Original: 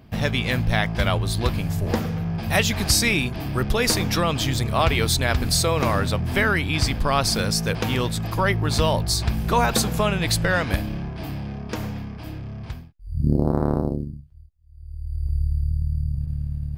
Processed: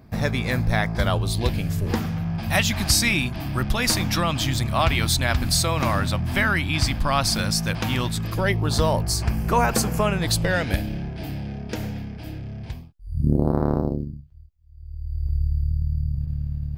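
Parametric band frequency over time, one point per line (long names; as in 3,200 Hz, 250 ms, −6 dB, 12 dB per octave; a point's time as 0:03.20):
parametric band −13.5 dB 0.33 octaves
0:00.94 3,000 Hz
0:02.12 440 Hz
0:08.04 440 Hz
0:08.96 3,700 Hz
0:10.12 3,700 Hz
0:10.55 1,100 Hz
0:12.64 1,100 Hz
0:13.69 9,600 Hz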